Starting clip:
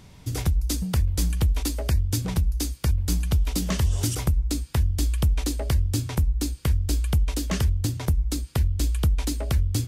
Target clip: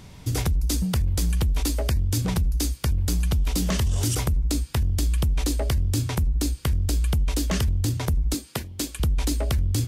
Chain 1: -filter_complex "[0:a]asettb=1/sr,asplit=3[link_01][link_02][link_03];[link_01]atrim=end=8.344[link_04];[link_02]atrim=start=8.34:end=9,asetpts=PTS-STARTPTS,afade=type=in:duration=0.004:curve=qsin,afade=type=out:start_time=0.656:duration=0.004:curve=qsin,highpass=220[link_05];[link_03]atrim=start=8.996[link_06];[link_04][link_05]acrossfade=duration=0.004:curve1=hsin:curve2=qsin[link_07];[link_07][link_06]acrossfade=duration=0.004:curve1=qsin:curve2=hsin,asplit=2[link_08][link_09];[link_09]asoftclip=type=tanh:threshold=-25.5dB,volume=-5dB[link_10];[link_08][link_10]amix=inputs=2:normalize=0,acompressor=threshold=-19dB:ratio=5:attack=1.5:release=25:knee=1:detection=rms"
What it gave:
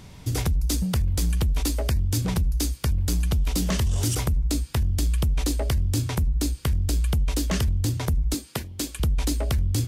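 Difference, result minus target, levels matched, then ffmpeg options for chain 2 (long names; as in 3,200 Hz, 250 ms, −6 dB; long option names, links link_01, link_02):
soft clipping: distortion +14 dB
-filter_complex "[0:a]asettb=1/sr,asplit=3[link_01][link_02][link_03];[link_01]atrim=end=8.344[link_04];[link_02]atrim=start=8.34:end=9,asetpts=PTS-STARTPTS,afade=type=in:duration=0.004:curve=qsin,afade=type=out:start_time=0.656:duration=0.004:curve=qsin,highpass=220[link_05];[link_03]atrim=start=8.996[link_06];[link_04][link_05]acrossfade=duration=0.004:curve1=hsin:curve2=qsin[link_07];[link_07][link_06]acrossfade=duration=0.004:curve1=qsin:curve2=hsin,asplit=2[link_08][link_09];[link_09]asoftclip=type=tanh:threshold=-13.5dB,volume=-5dB[link_10];[link_08][link_10]amix=inputs=2:normalize=0,acompressor=threshold=-19dB:ratio=5:attack=1.5:release=25:knee=1:detection=rms"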